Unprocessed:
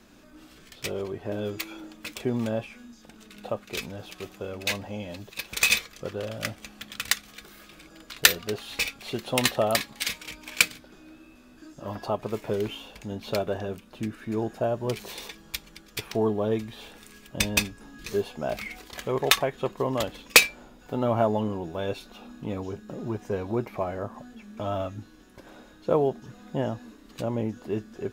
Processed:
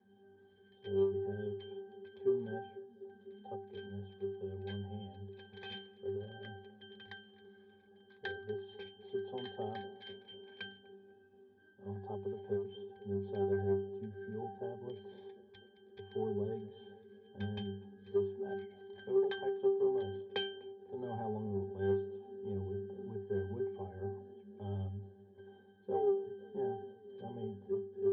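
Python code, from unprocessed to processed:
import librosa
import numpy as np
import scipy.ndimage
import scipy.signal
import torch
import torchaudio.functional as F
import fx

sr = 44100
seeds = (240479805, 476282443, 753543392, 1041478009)

y = fx.octave_resonator(x, sr, note='G', decay_s=0.47)
y = fx.echo_banded(y, sr, ms=249, feedback_pct=78, hz=320.0, wet_db=-16.0)
y = 10.0 ** (-29.0 / 20.0) * np.tanh(y / 10.0 ** (-29.0 / 20.0))
y = fx.cabinet(y, sr, low_hz=120.0, low_slope=12, high_hz=4200.0, hz=(170.0, 410.0, 640.0), db=(-10, 4, 6))
y = fx.end_taper(y, sr, db_per_s=110.0)
y = F.gain(torch.from_numpy(y), 6.5).numpy()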